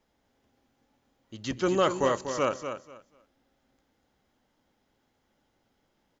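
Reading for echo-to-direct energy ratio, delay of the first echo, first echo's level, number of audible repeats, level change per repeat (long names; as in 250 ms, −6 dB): −8.5 dB, 243 ms, −8.5 dB, 2, −14.0 dB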